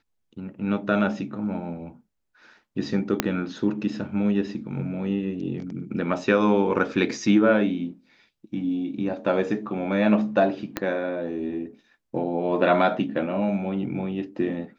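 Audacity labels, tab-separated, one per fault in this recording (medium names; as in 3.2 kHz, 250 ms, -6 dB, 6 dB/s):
3.200000	3.200000	pop -4 dBFS
10.770000	10.770000	pop -10 dBFS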